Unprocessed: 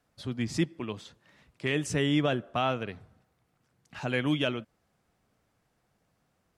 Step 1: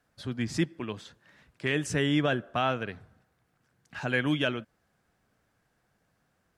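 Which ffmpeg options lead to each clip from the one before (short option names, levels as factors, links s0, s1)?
-af "equalizer=f=1600:t=o:w=0.33:g=7"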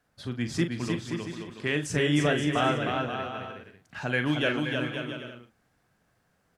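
-filter_complex "[0:a]asplit=2[s0][s1];[s1]adelay=41,volume=0.355[s2];[s0][s2]amix=inputs=2:normalize=0,asplit=2[s3][s4];[s4]aecho=0:1:310|527|678.9|785.2|859.7:0.631|0.398|0.251|0.158|0.1[s5];[s3][s5]amix=inputs=2:normalize=0"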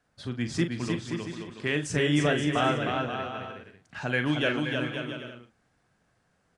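-af "aresample=22050,aresample=44100"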